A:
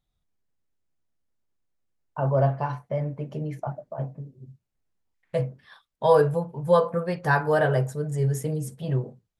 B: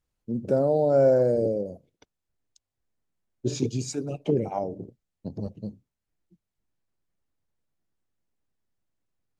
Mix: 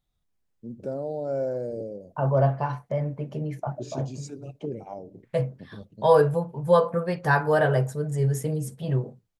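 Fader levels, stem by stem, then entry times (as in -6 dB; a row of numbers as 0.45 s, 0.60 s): +0.5 dB, -9.0 dB; 0.00 s, 0.35 s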